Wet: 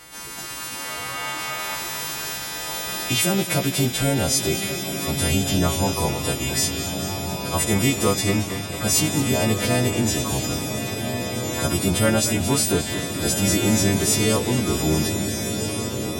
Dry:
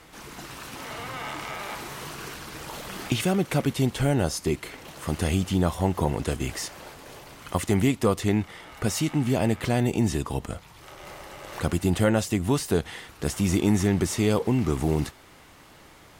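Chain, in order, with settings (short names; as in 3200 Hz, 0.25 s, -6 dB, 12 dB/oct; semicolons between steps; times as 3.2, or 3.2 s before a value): frequency quantiser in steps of 2 st; diffused feedback echo 1.452 s, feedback 63%, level -7 dB; warbling echo 0.223 s, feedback 65%, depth 105 cents, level -12.5 dB; gain +2 dB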